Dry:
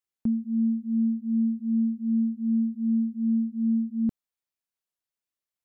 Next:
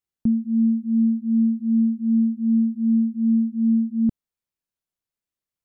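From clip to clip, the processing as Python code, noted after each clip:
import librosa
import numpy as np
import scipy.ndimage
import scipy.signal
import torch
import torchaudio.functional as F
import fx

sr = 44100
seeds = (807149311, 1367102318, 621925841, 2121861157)

y = fx.low_shelf(x, sr, hz=340.0, db=10.0)
y = F.gain(torch.from_numpy(y), -1.5).numpy()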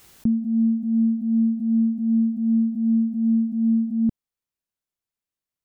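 y = fx.pre_swell(x, sr, db_per_s=55.0)
y = F.gain(torch.from_numpy(y), -1.0).numpy()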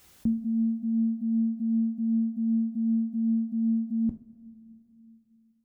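y = fx.rev_double_slope(x, sr, seeds[0], early_s=0.29, late_s=3.2, knee_db=-20, drr_db=6.0)
y = F.gain(torch.from_numpy(y), -6.0).numpy()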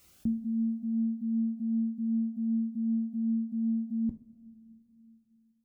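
y = fx.notch_cascade(x, sr, direction='rising', hz=1.4)
y = F.gain(torch.from_numpy(y), -3.5).numpy()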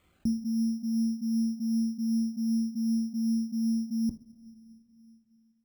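y = np.repeat(scipy.signal.resample_poly(x, 1, 8), 8)[:len(x)]
y = F.gain(torch.from_numpy(y), 1.5).numpy()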